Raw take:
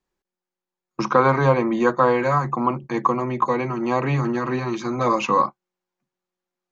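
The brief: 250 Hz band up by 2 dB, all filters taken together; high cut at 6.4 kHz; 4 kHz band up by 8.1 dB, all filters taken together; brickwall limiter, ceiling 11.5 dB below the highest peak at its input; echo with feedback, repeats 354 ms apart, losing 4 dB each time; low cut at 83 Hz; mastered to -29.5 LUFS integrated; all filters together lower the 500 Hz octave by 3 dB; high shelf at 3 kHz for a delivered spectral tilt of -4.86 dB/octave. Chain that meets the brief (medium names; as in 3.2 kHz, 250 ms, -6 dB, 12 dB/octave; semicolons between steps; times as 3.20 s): high-pass 83 Hz; low-pass 6.4 kHz; peaking EQ 250 Hz +4 dB; peaking EQ 500 Hz -5 dB; treble shelf 3 kHz +7.5 dB; peaking EQ 4 kHz +5.5 dB; peak limiter -16 dBFS; feedback delay 354 ms, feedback 63%, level -4 dB; trim -6 dB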